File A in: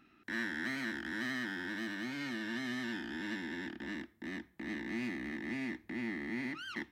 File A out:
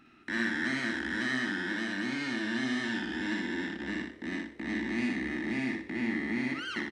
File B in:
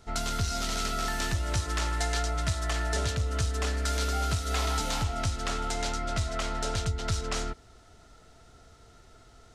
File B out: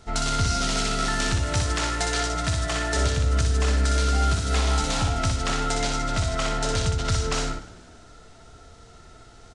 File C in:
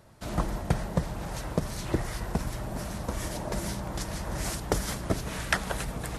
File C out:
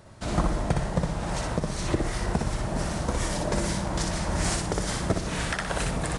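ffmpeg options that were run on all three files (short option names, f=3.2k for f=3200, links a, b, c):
-filter_complex "[0:a]aresample=22050,aresample=44100,asplit=2[a][b];[b]aecho=0:1:61|122|183|244:0.631|0.183|0.0531|0.0154[c];[a][c]amix=inputs=2:normalize=0,alimiter=limit=-17.5dB:level=0:latency=1:release=323,asplit=2[d][e];[e]asplit=4[f][g][h][i];[f]adelay=149,afreqshift=70,volume=-22dB[j];[g]adelay=298,afreqshift=140,volume=-26.9dB[k];[h]adelay=447,afreqshift=210,volume=-31.8dB[l];[i]adelay=596,afreqshift=280,volume=-36.6dB[m];[j][k][l][m]amix=inputs=4:normalize=0[n];[d][n]amix=inputs=2:normalize=0,acontrast=24"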